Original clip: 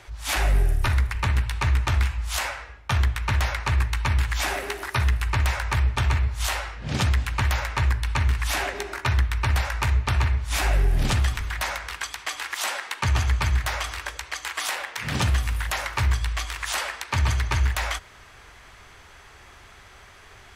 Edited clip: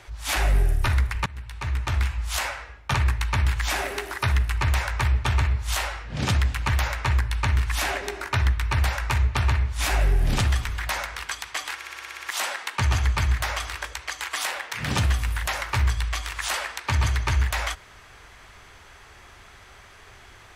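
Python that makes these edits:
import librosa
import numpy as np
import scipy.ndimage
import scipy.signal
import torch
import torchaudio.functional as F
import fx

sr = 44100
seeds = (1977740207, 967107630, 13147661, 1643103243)

y = fx.edit(x, sr, fx.fade_in_from(start_s=1.26, length_s=0.92, floor_db=-23.0),
    fx.cut(start_s=2.94, length_s=0.72),
    fx.stutter(start_s=12.47, slice_s=0.06, count=9), tone=tone)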